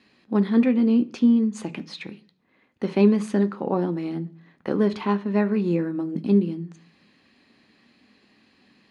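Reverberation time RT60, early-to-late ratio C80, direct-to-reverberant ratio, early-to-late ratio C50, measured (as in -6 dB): 0.45 s, 24.5 dB, 9.5 dB, 19.5 dB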